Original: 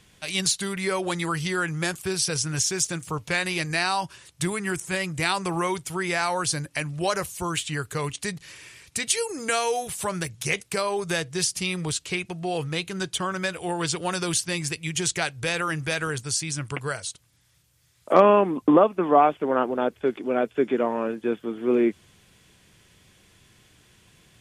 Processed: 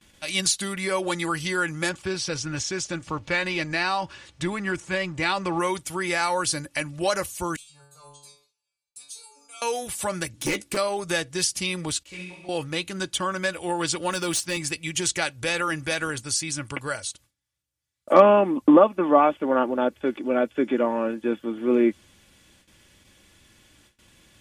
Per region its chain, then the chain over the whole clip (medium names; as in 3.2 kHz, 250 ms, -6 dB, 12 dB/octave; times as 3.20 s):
1.89–5.60 s: companding laws mixed up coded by mu + distance through air 110 m
7.56–9.62 s: peaking EQ 190 Hz -11.5 dB 0.97 oct + static phaser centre 780 Hz, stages 4 + inharmonic resonator 140 Hz, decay 0.8 s, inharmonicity 0.002
10.33–10.77 s: peaking EQ 310 Hz +14.5 dB 0.72 oct + doubling 14 ms -10.5 dB + hard clipper -21.5 dBFS
12.03–12.49 s: feedback comb 62 Hz, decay 0.3 s, harmonics odd, mix 80% + flutter echo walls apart 11.4 m, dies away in 0.89 s + detune thickener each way 20 cents
14.10–14.57 s: high-pass 100 Hz + overload inside the chain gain 21.5 dB + modulation noise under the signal 34 dB
whole clip: gate with hold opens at -47 dBFS; comb 3.5 ms, depth 47%